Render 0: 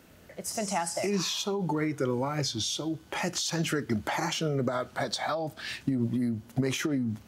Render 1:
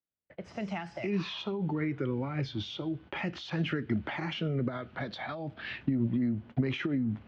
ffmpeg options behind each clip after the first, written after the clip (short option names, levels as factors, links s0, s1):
-filter_complex "[0:a]agate=range=0.00501:threshold=0.00447:ratio=16:detection=peak,lowpass=f=3000:w=0.5412,lowpass=f=3000:w=1.3066,acrossover=split=350|1800|2300[s0][s1][s2][s3];[s1]acompressor=threshold=0.00891:ratio=6[s4];[s0][s4][s2][s3]amix=inputs=4:normalize=0"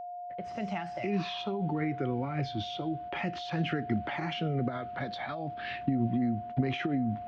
-af "aeval=exprs='val(0)+0.0126*sin(2*PI*710*n/s)':c=same"